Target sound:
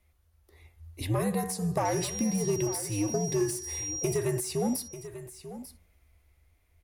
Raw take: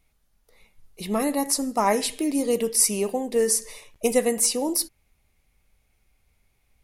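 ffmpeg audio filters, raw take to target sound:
-filter_complex "[0:a]alimiter=limit=-13dB:level=0:latency=1:release=50,afreqshift=-90,asettb=1/sr,asplit=3[a][b][c];[a]atrim=end=1.854[d];[b]atrim=start=1.85:end=4.18,asetpts=PTS-STARTPTS,afade=t=in:d=0.004:c=qsin,afade=t=out:st=2.326:d=0.004:c=qsin,aeval=exprs='val(0)+0.0355*sin(2*PI*5700*n/s)':c=same[e];[c]atrim=start=4.176[f];[d][e]acrossfade=d=0.004:c1=hsin:c2=qsin[g];[g][f]acrossfade=d=0.004:c1=qsin:c2=hsin,dynaudnorm=f=200:g=11:m=4dB,asoftclip=type=tanh:threshold=-13dB,highshelf=f=9.7k:g=11.5,bandreject=f=93.33:t=h:w=4,bandreject=f=186.66:t=h:w=4,bandreject=f=279.99:t=h:w=4,bandreject=f=373.32:t=h:w=4,bandreject=f=466.65:t=h:w=4,bandreject=f=559.98:t=h:w=4,bandreject=f=653.31:t=h:w=4,bandreject=f=746.64:t=h:w=4,bandreject=f=839.97:t=h:w=4,bandreject=f=933.3:t=h:w=4,bandreject=f=1.02663k:t=h:w=4,bandreject=f=1.11996k:t=h:w=4,bandreject=f=1.21329k:t=h:w=4,bandreject=f=1.30662k:t=h:w=4,bandreject=f=1.39995k:t=h:w=4,bandreject=f=1.49328k:t=h:w=4,bandreject=f=1.58661k:t=h:w=4,bandreject=f=1.67994k:t=h:w=4,bandreject=f=1.77327k:t=h:w=4,acompressor=threshold=-24dB:ratio=6,highshelf=f=3.8k:g=-11,aecho=1:1:892:0.211"

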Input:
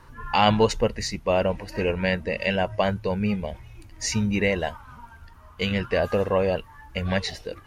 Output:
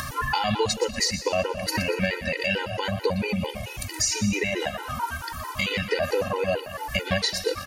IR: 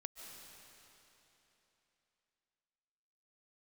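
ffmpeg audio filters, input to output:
-filter_complex "[0:a]highpass=49,asplit=2[a][b];[b]acompressor=mode=upward:threshold=-24dB:ratio=2.5,volume=-0.5dB[c];[a][c]amix=inputs=2:normalize=0,highshelf=f=3.7k:g=10.5,alimiter=limit=-8dB:level=0:latency=1:release=26,lowshelf=f=410:g=-6,acompressor=threshold=-26dB:ratio=6,aecho=1:1:120|240|360|480|600:0.266|0.125|0.0588|0.0276|0.013,asplit=2[d][e];[1:a]atrim=start_sample=2205,afade=t=out:st=0.33:d=0.01,atrim=end_sample=14994[f];[e][f]afir=irnorm=-1:irlink=0,volume=-2.5dB[g];[d][g]amix=inputs=2:normalize=0,afftfilt=real='re*gt(sin(2*PI*4.5*pts/sr)*(1-2*mod(floor(b*sr/1024/260),2)),0)':imag='im*gt(sin(2*PI*4.5*pts/sr)*(1-2*mod(floor(b*sr/1024/260),2)),0)':win_size=1024:overlap=0.75,volume=4dB"

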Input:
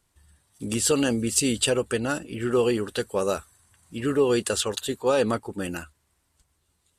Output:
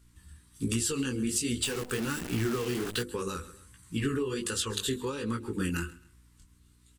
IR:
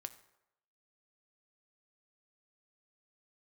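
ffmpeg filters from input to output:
-filter_complex "[0:a]bandreject=f=50:t=h:w=6,bandreject=f=100:t=h:w=6,bandreject=f=150:t=h:w=6,bandreject=f=200:t=h:w=6,bandreject=f=250:t=h:w=6,bandreject=f=300:t=h:w=6,bandreject=f=350:t=h:w=6,bandreject=f=400:t=h:w=6,bandreject=f=450:t=h:w=6,bandreject=f=500:t=h:w=6,flanger=delay=16.5:depth=7.5:speed=1.3,aecho=1:1:133|266:0.0794|0.023,acompressor=threshold=-33dB:ratio=16,asuperstop=centerf=670:order=4:qfactor=1.2,lowshelf=f=76:g=8.5,aeval=exprs='val(0)+0.000447*(sin(2*PI*60*n/s)+sin(2*PI*2*60*n/s)/2+sin(2*PI*3*60*n/s)/3+sin(2*PI*4*60*n/s)/4+sin(2*PI*5*60*n/s)/5)':c=same,asettb=1/sr,asplit=3[a][b][c];[a]atrim=end=1.634[d];[b]atrim=start=1.63:end=3.03,asetpts=PTS-STARTPTS,afade=t=in:d=0.004:c=qsin,afade=t=out:st=1.396:d=0.004:c=qsin,acrusher=bits=8:dc=4:mix=0:aa=0.000001[e];[c]atrim=start=3.026[f];[d][e]acrossfade=d=0.004:c1=hsin:c2=qsin[g];[g][f]acrossfade=d=0.004:c1=qsin:c2=hsin,volume=6.5dB"

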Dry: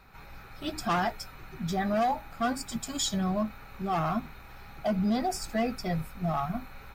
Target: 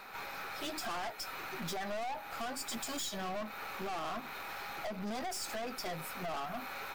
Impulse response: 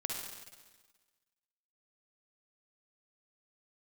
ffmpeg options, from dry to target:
-af "highpass=420,acompressor=threshold=-39dB:ratio=6,aeval=exprs='(tanh(251*val(0)+0.45)-tanh(0.45))/251':c=same,volume=11.5dB"

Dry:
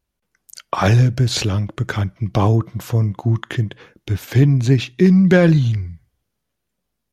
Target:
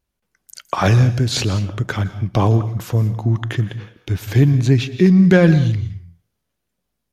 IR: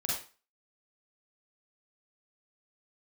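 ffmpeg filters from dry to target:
-filter_complex "[0:a]asplit=2[a][b];[1:a]atrim=start_sample=2205,adelay=118[c];[b][c]afir=irnorm=-1:irlink=0,volume=-18.5dB[d];[a][d]amix=inputs=2:normalize=0"

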